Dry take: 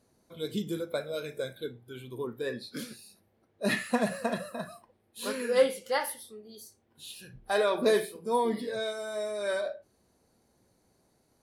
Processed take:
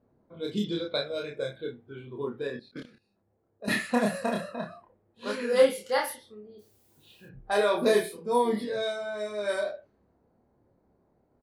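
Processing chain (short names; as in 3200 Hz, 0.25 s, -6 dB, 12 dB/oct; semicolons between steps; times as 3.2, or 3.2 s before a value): low-pass opened by the level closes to 1100 Hz, open at -26 dBFS; 0.61–1.05 synth low-pass 4100 Hz, resonance Q 3.7; 2.47–3.68 level quantiser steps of 19 dB; 6.58–7.25 added noise blue -69 dBFS; doubler 29 ms -2.5 dB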